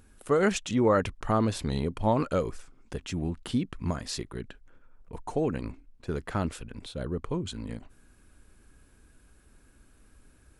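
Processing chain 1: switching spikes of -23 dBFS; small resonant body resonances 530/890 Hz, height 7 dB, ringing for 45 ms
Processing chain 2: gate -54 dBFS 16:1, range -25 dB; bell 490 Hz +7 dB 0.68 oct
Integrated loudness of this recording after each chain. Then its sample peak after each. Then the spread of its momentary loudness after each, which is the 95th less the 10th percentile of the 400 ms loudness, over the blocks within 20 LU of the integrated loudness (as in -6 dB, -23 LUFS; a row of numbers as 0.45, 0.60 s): -28.5, -27.0 LUFS; -9.0, -8.5 dBFS; 12, 19 LU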